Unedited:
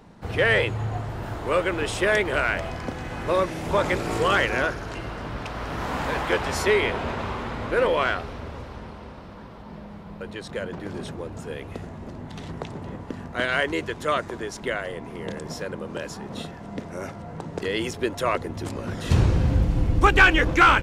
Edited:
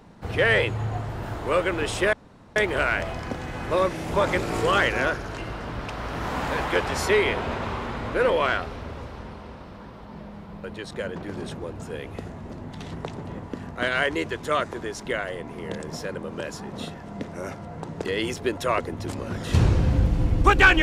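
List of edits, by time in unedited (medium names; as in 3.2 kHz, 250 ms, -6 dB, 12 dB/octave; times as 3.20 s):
2.13 s: insert room tone 0.43 s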